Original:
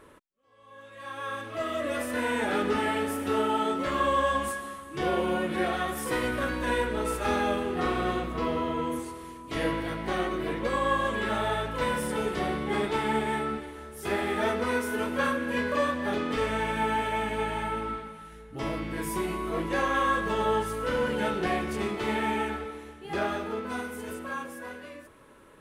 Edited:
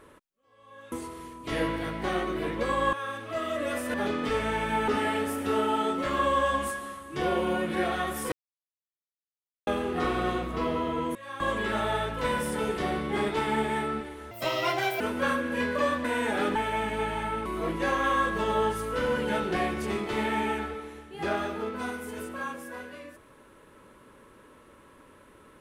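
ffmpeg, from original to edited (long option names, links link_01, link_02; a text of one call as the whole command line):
ffmpeg -i in.wav -filter_complex "[0:a]asplit=14[link_01][link_02][link_03][link_04][link_05][link_06][link_07][link_08][link_09][link_10][link_11][link_12][link_13][link_14];[link_01]atrim=end=0.922[link_15];[link_02]atrim=start=8.958:end=10.972[link_16];[link_03]atrim=start=1.168:end=2.182[link_17];[link_04]atrim=start=16.008:end=16.952[link_18];[link_05]atrim=start=2.688:end=6.13,asetpts=PTS-STARTPTS,afade=type=out:start_time=3.438:duration=0.004:curve=hsin[link_19];[link_06]atrim=start=6.13:end=7.48,asetpts=PTS-STARTPTS,volume=0[link_20];[link_07]atrim=start=7.48:end=8.962,asetpts=PTS-STARTPTS,afade=type=in:duration=0.004:curve=hsin[link_21];[link_08]atrim=start=0.918:end=1.172[link_22];[link_09]atrim=start=10.968:end=13.884[link_23];[link_10]atrim=start=13.88:end=14.97,asetpts=PTS-STARTPTS,asetrate=69237,aresample=44100,atrim=end_sample=30617,asetpts=PTS-STARTPTS[link_24];[link_11]atrim=start=14.966:end=16.012[link_25];[link_12]atrim=start=2.178:end=2.692[link_26];[link_13]atrim=start=16.948:end=17.852[link_27];[link_14]atrim=start=19.358[link_28];[link_15][link_16]acrossfade=duration=0.004:curve1=hsin:curve2=hsin[link_29];[link_29][link_17]acrossfade=duration=0.004:curve1=hsin:curve2=hsin[link_30];[link_30][link_18]acrossfade=duration=0.004:curve1=hsin:curve2=hsin[link_31];[link_19][link_20][link_21]concat=n=3:v=0:a=1[link_32];[link_31][link_32]acrossfade=duration=0.004:curve1=hsin:curve2=hsin[link_33];[link_33][link_22]acrossfade=duration=0.004:curve1=hsin:curve2=hsin[link_34];[link_34][link_23]acrossfade=duration=0.004:curve1=hsin:curve2=hsin[link_35];[link_35][link_24]acrossfade=duration=0.004:curve1=hsin:curve2=hsin[link_36];[link_36][link_25]acrossfade=duration=0.004:curve1=hsin:curve2=hsin[link_37];[link_37][link_26]acrossfade=duration=0.004:curve1=hsin:curve2=hsin[link_38];[link_38][link_27]acrossfade=duration=0.004:curve1=hsin:curve2=hsin[link_39];[link_39][link_28]acrossfade=duration=0.004:curve1=hsin:curve2=hsin" out.wav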